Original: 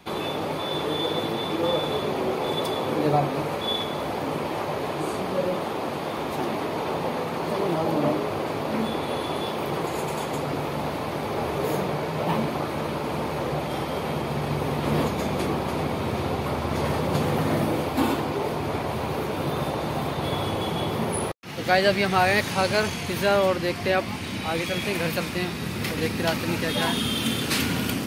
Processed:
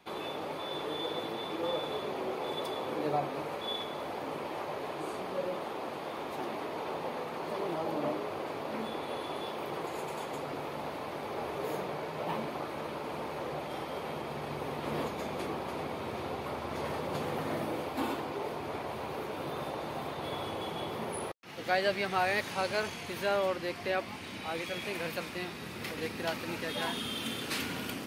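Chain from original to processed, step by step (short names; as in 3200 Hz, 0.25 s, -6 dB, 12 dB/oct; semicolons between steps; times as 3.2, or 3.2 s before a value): tone controls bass -8 dB, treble -3 dB; gain -8.5 dB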